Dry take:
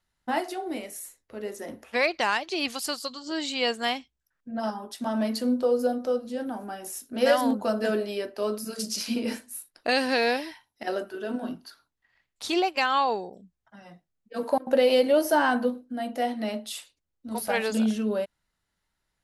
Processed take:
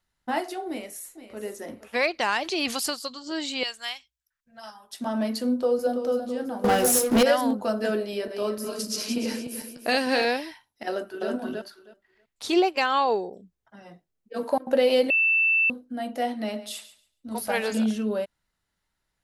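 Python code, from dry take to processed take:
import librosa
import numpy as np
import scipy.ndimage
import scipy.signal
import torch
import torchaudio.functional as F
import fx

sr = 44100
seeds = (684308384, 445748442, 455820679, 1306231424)

y = fx.echo_throw(x, sr, start_s=0.68, length_s=0.72, ms=470, feedback_pct=25, wet_db=-12.5)
y = fx.env_flatten(y, sr, amount_pct=50, at=(2.28, 2.9))
y = fx.tone_stack(y, sr, knobs='10-0-10', at=(3.63, 4.93))
y = fx.echo_throw(y, sr, start_s=5.45, length_s=0.57, ms=330, feedback_pct=60, wet_db=-8.0)
y = fx.leveller(y, sr, passes=5, at=(6.64, 7.23))
y = fx.reverse_delay_fb(y, sr, ms=149, feedback_pct=58, wet_db=-7.0, at=(7.98, 10.25))
y = fx.echo_throw(y, sr, start_s=10.89, length_s=0.4, ms=320, feedback_pct=15, wet_db=-1.0)
y = fx.peak_eq(y, sr, hz=410.0, db=6.5, octaves=0.77, at=(12.44, 14.38))
y = fx.echo_thinned(y, sr, ms=139, feedback_pct=18, hz=190.0, wet_db=-15.0, at=(16.4, 17.84))
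y = fx.edit(y, sr, fx.bleep(start_s=15.1, length_s=0.6, hz=2660.0, db=-18.0), tone=tone)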